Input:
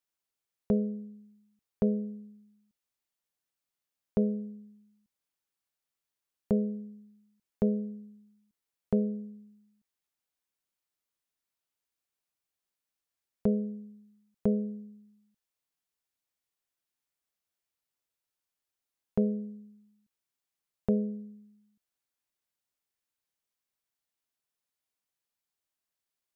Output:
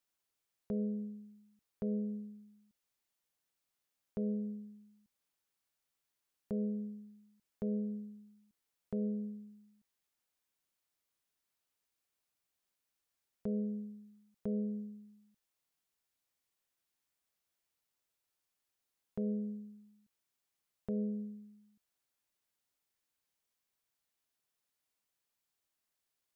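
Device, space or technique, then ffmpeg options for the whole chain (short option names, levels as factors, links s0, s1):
stacked limiters: -af "alimiter=limit=0.0841:level=0:latency=1:release=341,alimiter=level_in=1.58:limit=0.0631:level=0:latency=1:release=30,volume=0.631,alimiter=level_in=2.24:limit=0.0631:level=0:latency=1:release=212,volume=0.447,volume=1.26"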